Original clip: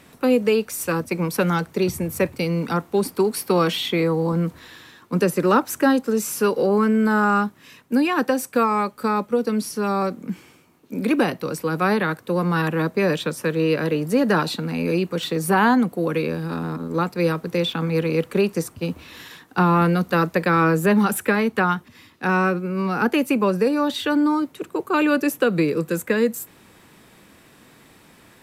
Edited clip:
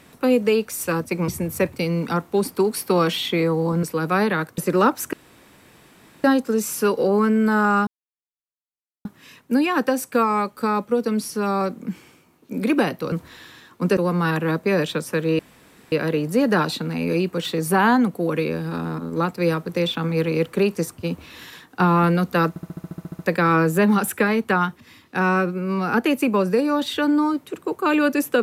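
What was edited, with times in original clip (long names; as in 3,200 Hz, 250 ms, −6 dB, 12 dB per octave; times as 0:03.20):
0:01.28–0:01.88: remove
0:04.43–0:05.28: swap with 0:11.53–0:12.28
0:05.83: splice in room tone 1.11 s
0:07.46: splice in silence 1.18 s
0:13.70: splice in room tone 0.53 s
0:20.27: stutter 0.07 s, 11 plays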